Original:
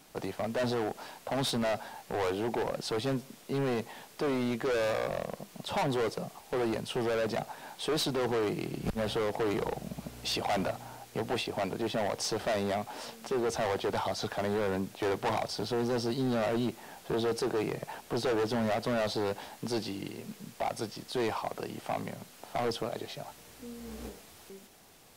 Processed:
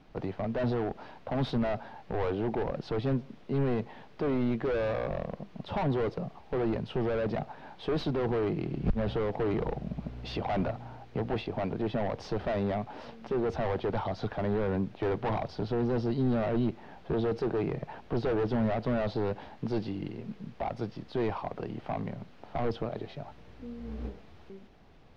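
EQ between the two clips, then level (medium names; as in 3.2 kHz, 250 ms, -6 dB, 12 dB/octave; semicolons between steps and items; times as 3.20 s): distance through air 270 m; bass shelf 64 Hz +10 dB; bass shelf 340 Hz +6 dB; -1.5 dB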